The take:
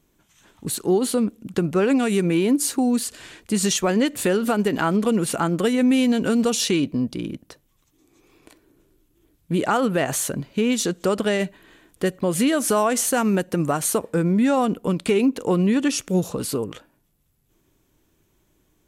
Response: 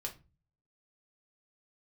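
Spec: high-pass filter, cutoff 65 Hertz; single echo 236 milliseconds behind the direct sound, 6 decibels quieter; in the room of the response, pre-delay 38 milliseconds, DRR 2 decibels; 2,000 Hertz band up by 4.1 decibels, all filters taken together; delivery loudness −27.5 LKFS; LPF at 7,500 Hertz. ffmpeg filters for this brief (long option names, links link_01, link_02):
-filter_complex "[0:a]highpass=65,lowpass=7500,equalizer=frequency=2000:width_type=o:gain=5.5,aecho=1:1:236:0.501,asplit=2[link_01][link_02];[1:a]atrim=start_sample=2205,adelay=38[link_03];[link_02][link_03]afir=irnorm=-1:irlink=0,volume=-1dB[link_04];[link_01][link_04]amix=inputs=2:normalize=0,volume=-9dB"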